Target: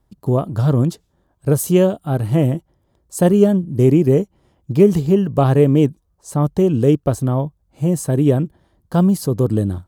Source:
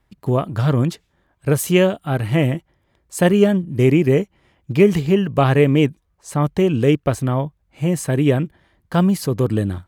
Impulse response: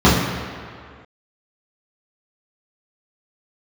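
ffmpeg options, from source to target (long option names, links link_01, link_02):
-af "equalizer=frequency=2200:width=1:gain=-14,volume=2dB"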